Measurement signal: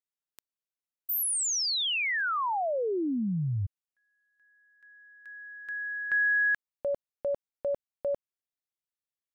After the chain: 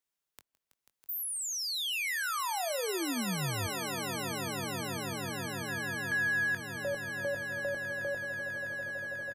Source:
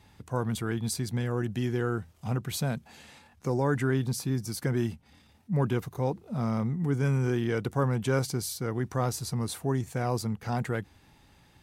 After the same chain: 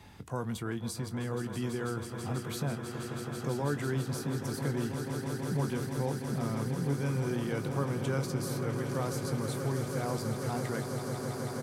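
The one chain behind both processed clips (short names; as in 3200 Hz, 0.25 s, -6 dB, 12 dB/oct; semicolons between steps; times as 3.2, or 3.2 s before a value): doubler 21 ms -11 dB; swelling echo 0.163 s, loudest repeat 8, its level -12.5 dB; three-band squash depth 40%; gain -6 dB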